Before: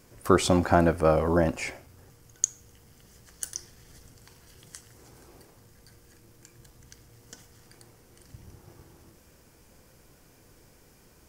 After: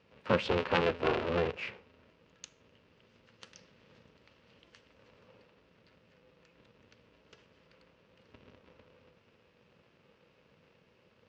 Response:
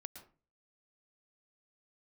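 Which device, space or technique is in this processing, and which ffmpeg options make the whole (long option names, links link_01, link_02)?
ring modulator pedal into a guitar cabinet: -af "aeval=exprs='val(0)*sgn(sin(2*PI*170*n/s))':channel_layout=same,highpass=83,equalizer=frequency=290:width_type=q:width=4:gain=-7,equalizer=frequency=490:width_type=q:width=4:gain=8,equalizer=frequency=720:width_type=q:width=4:gain=-7,equalizer=frequency=2700:width_type=q:width=4:gain=7,lowpass=frequency=4100:width=0.5412,lowpass=frequency=4100:width=1.3066,volume=-8dB"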